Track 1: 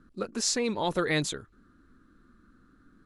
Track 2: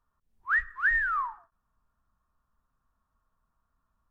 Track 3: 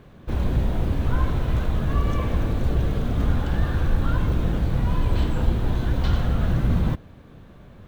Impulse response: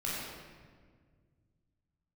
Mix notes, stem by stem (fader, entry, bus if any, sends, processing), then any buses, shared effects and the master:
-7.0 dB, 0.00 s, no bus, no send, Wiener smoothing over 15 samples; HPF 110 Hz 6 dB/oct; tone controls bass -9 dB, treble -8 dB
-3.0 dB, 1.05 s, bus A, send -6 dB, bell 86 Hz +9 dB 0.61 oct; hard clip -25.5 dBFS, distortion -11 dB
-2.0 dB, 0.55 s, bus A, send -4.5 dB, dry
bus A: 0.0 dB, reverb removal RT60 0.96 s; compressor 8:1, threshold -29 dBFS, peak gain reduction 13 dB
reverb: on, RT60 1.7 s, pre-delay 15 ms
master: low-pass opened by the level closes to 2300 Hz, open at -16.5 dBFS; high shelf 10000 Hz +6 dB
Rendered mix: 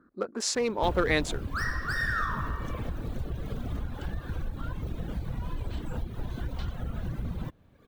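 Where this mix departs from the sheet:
stem 1 -7.0 dB -> +3.5 dB; stem 3: send off; master: missing low-pass opened by the level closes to 2300 Hz, open at -16.5 dBFS

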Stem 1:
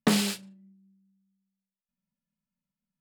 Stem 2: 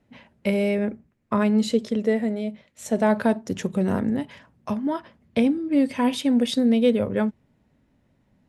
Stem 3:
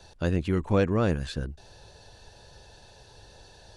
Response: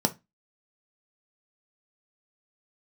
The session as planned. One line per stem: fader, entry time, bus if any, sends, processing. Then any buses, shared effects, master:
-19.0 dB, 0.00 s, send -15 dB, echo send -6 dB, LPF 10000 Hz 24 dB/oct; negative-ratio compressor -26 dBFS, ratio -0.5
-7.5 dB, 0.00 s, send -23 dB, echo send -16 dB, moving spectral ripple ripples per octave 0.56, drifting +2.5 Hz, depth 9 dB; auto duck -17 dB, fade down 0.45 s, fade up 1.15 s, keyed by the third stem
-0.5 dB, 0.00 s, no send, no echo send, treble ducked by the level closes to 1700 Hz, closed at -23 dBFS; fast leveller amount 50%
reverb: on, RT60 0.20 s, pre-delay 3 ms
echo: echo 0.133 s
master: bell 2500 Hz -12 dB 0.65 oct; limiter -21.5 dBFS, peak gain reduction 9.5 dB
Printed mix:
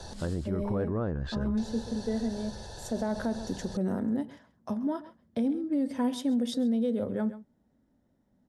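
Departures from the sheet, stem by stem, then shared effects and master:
stem 1: send off; stem 2: missing moving spectral ripple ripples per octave 0.56, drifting +2.5 Hz, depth 9 dB; stem 3 -0.5 dB -> -6.5 dB

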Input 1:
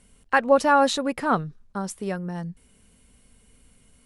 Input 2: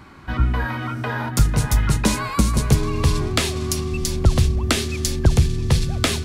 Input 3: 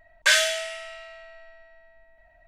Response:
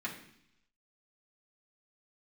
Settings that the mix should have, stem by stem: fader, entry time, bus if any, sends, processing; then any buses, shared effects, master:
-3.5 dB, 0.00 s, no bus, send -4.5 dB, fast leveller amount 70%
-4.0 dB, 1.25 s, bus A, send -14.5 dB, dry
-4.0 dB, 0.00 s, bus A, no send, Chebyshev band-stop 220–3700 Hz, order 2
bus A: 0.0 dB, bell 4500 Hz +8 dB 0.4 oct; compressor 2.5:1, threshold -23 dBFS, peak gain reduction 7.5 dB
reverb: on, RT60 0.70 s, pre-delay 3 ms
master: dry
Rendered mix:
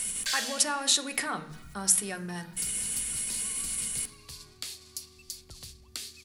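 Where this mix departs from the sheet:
stem 2 -4.0 dB -> -14.5 dB; stem 3: missing Chebyshev band-stop 220–3700 Hz, order 2; master: extra pre-emphasis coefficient 0.9

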